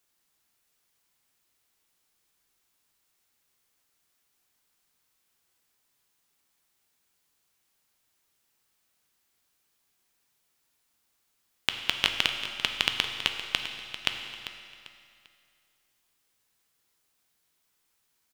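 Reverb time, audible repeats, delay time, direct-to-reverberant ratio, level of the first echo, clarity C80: 2.4 s, 3, 395 ms, 4.0 dB, −13.0 dB, 6.0 dB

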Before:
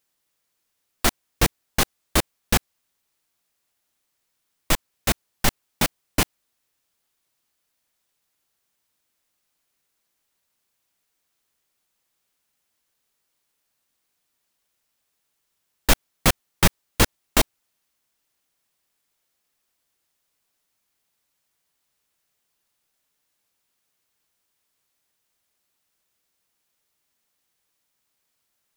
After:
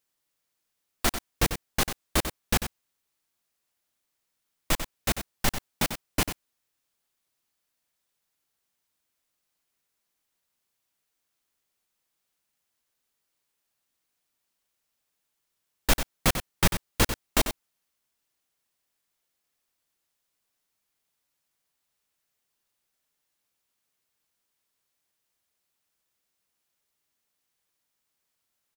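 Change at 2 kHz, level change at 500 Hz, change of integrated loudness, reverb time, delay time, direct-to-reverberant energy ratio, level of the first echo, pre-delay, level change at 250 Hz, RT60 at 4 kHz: −4.5 dB, −4.5 dB, −4.5 dB, no reverb audible, 94 ms, no reverb audible, −9.5 dB, no reverb audible, −4.5 dB, no reverb audible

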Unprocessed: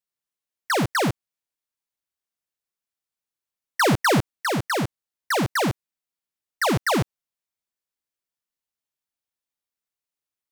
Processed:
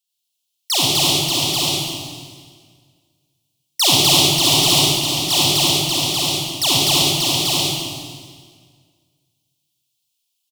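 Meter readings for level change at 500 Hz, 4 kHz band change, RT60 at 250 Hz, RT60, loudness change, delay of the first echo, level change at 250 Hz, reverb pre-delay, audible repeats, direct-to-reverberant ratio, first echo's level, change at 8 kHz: +1.0 dB, +20.0 dB, 2.0 s, 1.8 s, +8.5 dB, 586 ms, +3.0 dB, 39 ms, 1, −7.0 dB, −3.0 dB, +17.5 dB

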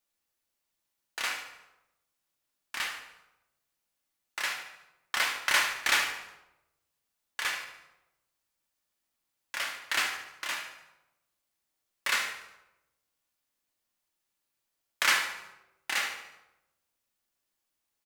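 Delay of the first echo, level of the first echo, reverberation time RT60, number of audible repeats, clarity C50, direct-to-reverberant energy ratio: 73 ms, −12.5 dB, 0.95 s, 4, 7.0 dB, 2.0 dB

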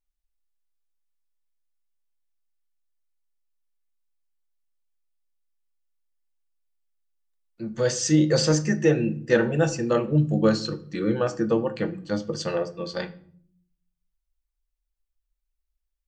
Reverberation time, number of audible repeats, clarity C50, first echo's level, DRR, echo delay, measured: 0.60 s, no echo audible, 16.5 dB, no echo audible, 9.0 dB, no echo audible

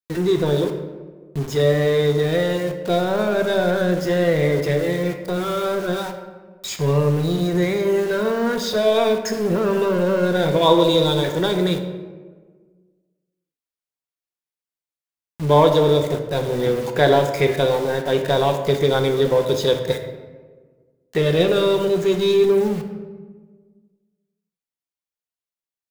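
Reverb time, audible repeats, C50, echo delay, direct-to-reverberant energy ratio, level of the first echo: 1.5 s, no echo audible, 7.5 dB, no echo audible, 4.5 dB, no echo audible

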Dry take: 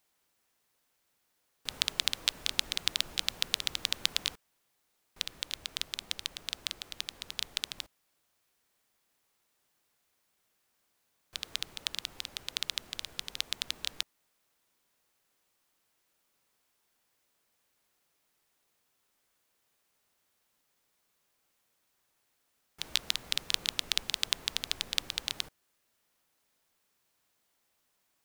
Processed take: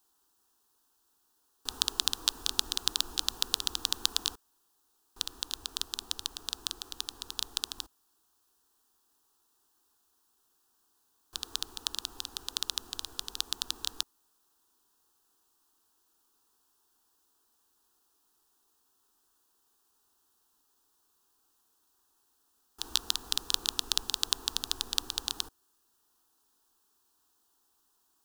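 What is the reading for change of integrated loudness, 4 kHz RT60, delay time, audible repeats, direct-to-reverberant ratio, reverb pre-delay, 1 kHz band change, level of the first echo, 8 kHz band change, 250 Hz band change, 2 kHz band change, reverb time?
+1.0 dB, no reverb audible, no echo audible, no echo audible, no reverb audible, no reverb audible, +4.0 dB, no echo audible, +4.0 dB, +2.5 dB, −6.0 dB, no reverb audible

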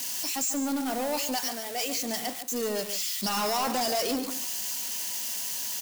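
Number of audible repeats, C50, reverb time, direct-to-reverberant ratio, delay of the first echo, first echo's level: 1, no reverb audible, no reverb audible, no reverb audible, 143 ms, −10.5 dB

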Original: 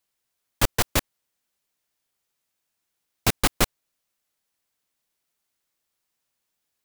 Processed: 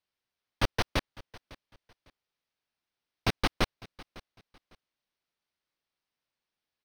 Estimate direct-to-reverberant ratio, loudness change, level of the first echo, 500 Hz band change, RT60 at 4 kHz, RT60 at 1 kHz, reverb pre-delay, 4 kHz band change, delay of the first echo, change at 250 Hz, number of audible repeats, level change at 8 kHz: no reverb audible, −7.0 dB, −21.0 dB, −5.0 dB, no reverb audible, no reverb audible, no reverb audible, −6.0 dB, 553 ms, −5.0 dB, 2, −17.0 dB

